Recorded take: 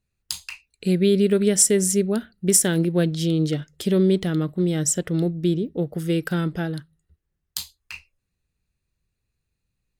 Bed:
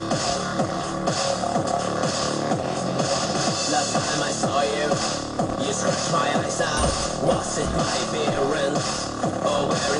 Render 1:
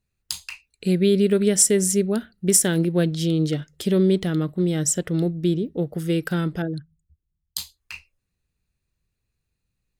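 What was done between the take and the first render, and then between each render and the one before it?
6.62–7.58 s: resonances exaggerated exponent 2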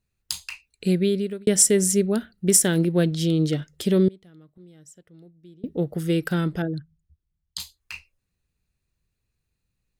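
0.88–1.47 s: fade out; 4.08–5.64 s: inverted gate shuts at -26 dBFS, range -27 dB; 6.65–7.60 s: distance through air 71 m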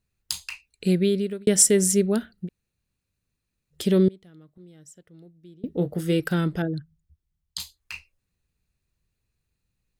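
2.46–3.73 s: room tone, crossfade 0.06 s; 5.72–6.20 s: doubling 22 ms -9 dB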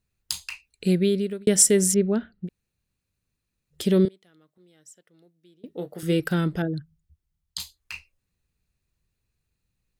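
1.94–2.46 s: distance through air 270 m; 4.05–6.03 s: high-pass 760 Hz 6 dB/octave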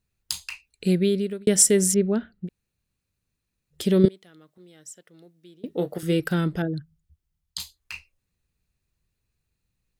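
4.04–5.98 s: gain +7 dB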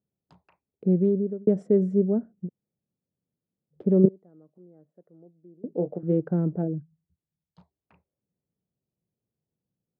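local Wiener filter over 15 samples; Chebyshev band-pass 160–640 Hz, order 2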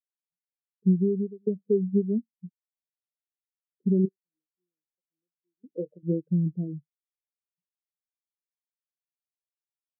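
compression 12:1, threshold -21 dBFS, peak gain reduction 11 dB; spectral contrast expander 2.5:1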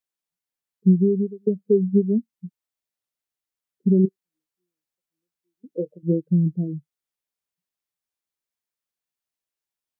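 trim +5.5 dB

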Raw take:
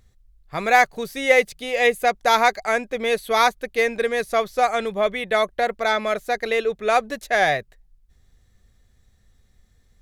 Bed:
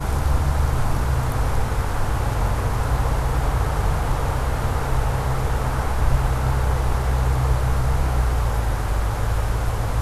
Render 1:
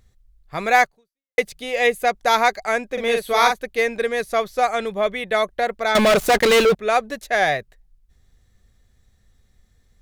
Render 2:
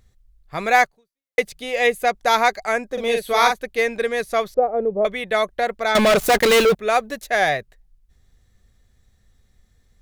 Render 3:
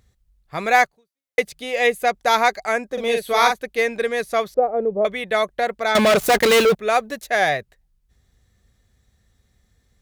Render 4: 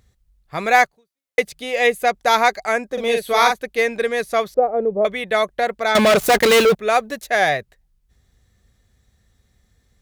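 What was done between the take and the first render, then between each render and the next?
0.83–1.38 s: fade out exponential; 2.93–3.62 s: doubling 43 ms -4 dB; 5.95–6.75 s: waveshaping leveller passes 5
2.72–3.24 s: peaking EQ 4.4 kHz -> 1 kHz -13.5 dB 0.41 oct; 4.54–5.05 s: resonant low-pass 510 Hz, resonance Q 2; 6.23–7.49 s: treble shelf 12 kHz +7.5 dB
high-pass 46 Hz
trim +1.5 dB; peak limiter -2 dBFS, peak gain reduction 1 dB

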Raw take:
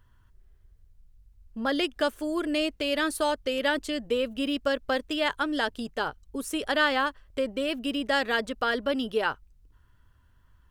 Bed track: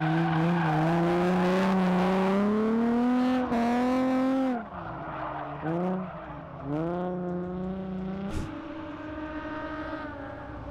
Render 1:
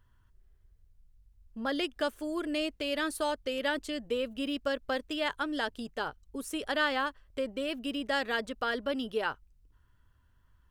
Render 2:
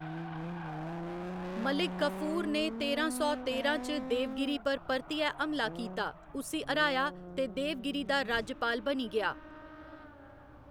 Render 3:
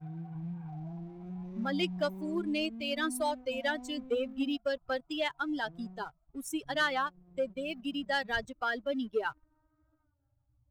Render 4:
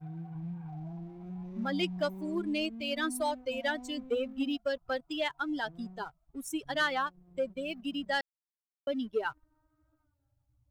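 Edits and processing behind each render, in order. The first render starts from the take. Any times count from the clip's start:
trim -5 dB
add bed track -14.5 dB
expander on every frequency bin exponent 2; waveshaping leveller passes 1
8.21–8.87 s: mute

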